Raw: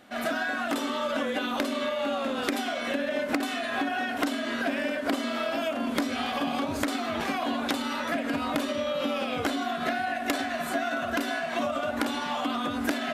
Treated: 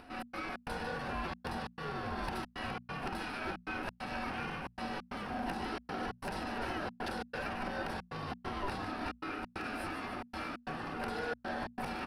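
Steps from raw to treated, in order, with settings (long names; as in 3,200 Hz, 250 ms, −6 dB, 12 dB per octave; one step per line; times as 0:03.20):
soft clipping −26.5 dBFS, distortion −13 dB
wrong playback speed 44.1 kHz file played as 48 kHz
EQ curve with evenly spaced ripples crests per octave 0.9, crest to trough 14 dB
ring modulation 490 Hz
upward compression, threshold −45 dBFS
high-shelf EQ 2,300 Hz −11 dB
echo with shifted repeats 148 ms, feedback 63%, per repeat +94 Hz, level −9.5 dB
gate pattern "xx.xx.xxxx" 135 BPM −60 dB
mains-hum notches 60/120/180/240 Hz
level −1.5 dB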